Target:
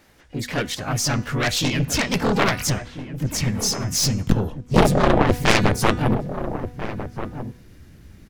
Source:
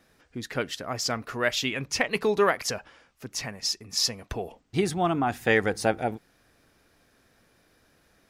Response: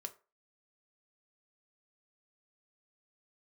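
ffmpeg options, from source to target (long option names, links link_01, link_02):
-filter_complex "[0:a]asplit=3[link_01][link_02][link_03];[link_02]asetrate=52444,aresample=44100,atempo=0.840896,volume=-1dB[link_04];[link_03]asetrate=88200,aresample=44100,atempo=0.5,volume=-12dB[link_05];[link_01][link_04][link_05]amix=inputs=3:normalize=0,asubboost=boost=10:cutoff=210,aeval=exprs='0.944*(cos(1*acos(clip(val(0)/0.944,-1,1)))-cos(1*PI/2))+0.299*(cos(7*acos(clip(val(0)/0.944,-1,1)))-cos(7*PI/2))':channel_layout=same,bandreject=frequency=245.3:width_type=h:width=4,bandreject=frequency=490.6:width_type=h:width=4,bandreject=frequency=735.9:width_type=h:width=4,bandreject=frequency=981.2:width_type=h:width=4,bandreject=frequency=1226.5:width_type=h:width=4,bandreject=frequency=1471.8:width_type=h:width=4,bandreject=frequency=1717.1:width_type=h:width=4,bandreject=frequency=1962.4:width_type=h:width=4,bandreject=frequency=2207.7:width_type=h:width=4,bandreject=frequency=2453:width_type=h:width=4,bandreject=frequency=2698.3:width_type=h:width=4,bandreject=frequency=2943.6:width_type=h:width=4,bandreject=frequency=3188.9:width_type=h:width=4,bandreject=frequency=3434.2:width_type=h:width=4,bandreject=frequency=3679.5:width_type=h:width=4,bandreject=frequency=3924.8:width_type=h:width=4,bandreject=frequency=4170.1:width_type=h:width=4,bandreject=frequency=4415.4:width_type=h:width=4,bandreject=frequency=4660.7:width_type=h:width=4,bandreject=frequency=4906:width_type=h:width=4,bandreject=frequency=5151.3:width_type=h:width=4,bandreject=frequency=5396.6:width_type=h:width=4,bandreject=frequency=5641.9:width_type=h:width=4,bandreject=frequency=5887.2:width_type=h:width=4,bandreject=frequency=6132.5:width_type=h:width=4,bandreject=frequency=6377.8:width_type=h:width=4,bandreject=frequency=6623.1:width_type=h:width=4,bandreject=frequency=6868.4:width_type=h:width=4,bandreject=frequency=7113.7:width_type=h:width=4,bandreject=frequency=7359:width_type=h:width=4,bandreject=frequency=7604.3:width_type=h:width=4,bandreject=frequency=7849.6:width_type=h:width=4,bandreject=frequency=8094.9:width_type=h:width=4,bandreject=frequency=8340.2:width_type=h:width=4,bandreject=frequency=8585.5:width_type=h:width=4,bandreject=frequency=8830.8:width_type=h:width=4,aeval=exprs='(tanh(3.55*val(0)+0.45)-tanh(0.45))/3.55':channel_layout=same,asplit=2[link_06][link_07];[link_07]adelay=1341,volume=-10dB,highshelf=frequency=4000:gain=-30.2[link_08];[link_06][link_08]amix=inputs=2:normalize=0,volume=4.5dB"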